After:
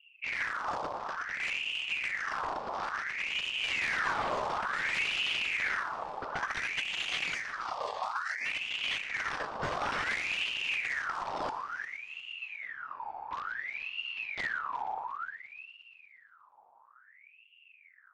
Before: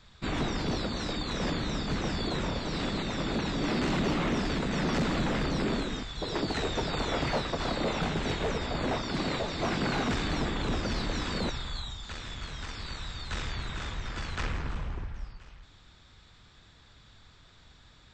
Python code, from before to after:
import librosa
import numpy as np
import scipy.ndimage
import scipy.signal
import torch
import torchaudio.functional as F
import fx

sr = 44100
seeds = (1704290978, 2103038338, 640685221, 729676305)

y = fx.wiener(x, sr, points=41)
y = fx.spec_erase(y, sr, start_s=7.34, length_s=1.12, low_hz=420.0, high_hz=2300.0)
y = fx.env_lowpass(y, sr, base_hz=370.0, full_db=-27.5)
y = fx.echo_heads(y, sr, ms=118, heads='first and third', feedback_pct=55, wet_db=-14.0)
y = fx.ring_lfo(y, sr, carrier_hz=1800.0, swing_pct=55, hz=0.57)